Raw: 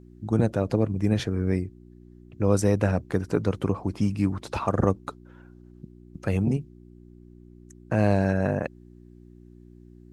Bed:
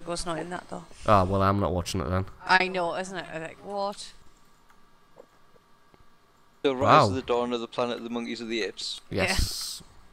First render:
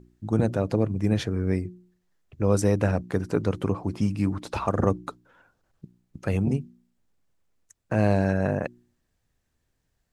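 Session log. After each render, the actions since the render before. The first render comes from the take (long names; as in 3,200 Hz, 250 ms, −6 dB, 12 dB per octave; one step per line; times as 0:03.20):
hum removal 60 Hz, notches 6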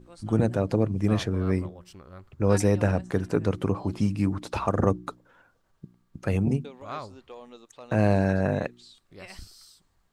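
mix in bed −18.5 dB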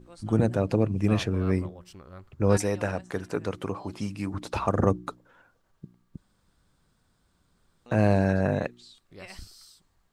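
0:00.63–0:01.52: parametric band 2,600 Hz +8 dB 0.2 octaves
0:02.57–0:04.34: low-shelf EQ 370 Hz −10 dB
0:06.17–0:07.86: fill with room tone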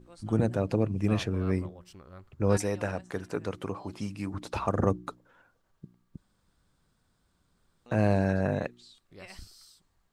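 level −3 dB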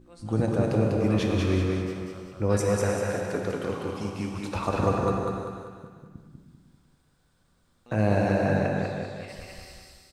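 repeating echo 196 ms, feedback 46%, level −3 dB
reverb whose tail is shaped and stops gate 390 ms flat, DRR 1 dB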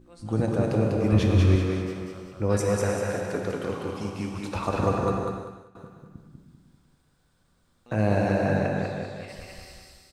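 0:01.12–0:01.56: parametric band 64 Hz +11.5 dB 2 octaves
0:05.23–0:05.75: fade out, to −16 dB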